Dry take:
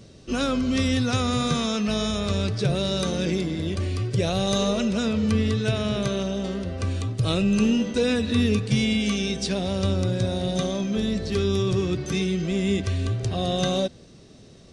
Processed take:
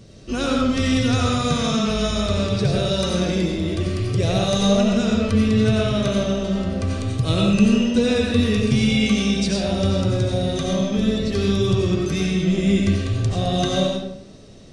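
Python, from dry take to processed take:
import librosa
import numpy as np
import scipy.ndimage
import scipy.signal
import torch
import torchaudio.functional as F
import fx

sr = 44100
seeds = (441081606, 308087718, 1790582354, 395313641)

y = fx.low_shelf(x, sr, hz=160.0, db=4.0)
y = fx.rev_freeverb(y, sr, rt60_s=0.75, hf_ratio=0.75, predelay_ms=50, drr_db=-1.5)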